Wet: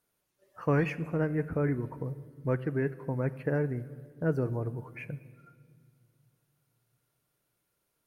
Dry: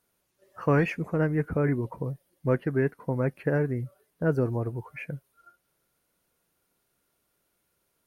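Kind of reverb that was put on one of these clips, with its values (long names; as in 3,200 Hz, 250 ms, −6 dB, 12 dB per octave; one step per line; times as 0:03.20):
rectangular room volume 3,500 cubic metres, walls mixed, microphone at 0.44 metres
level −4.5 dB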